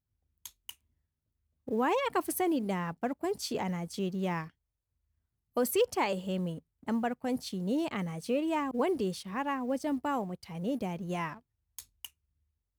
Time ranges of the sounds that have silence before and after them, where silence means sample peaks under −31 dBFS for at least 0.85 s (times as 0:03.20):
0:01.68–0:04.43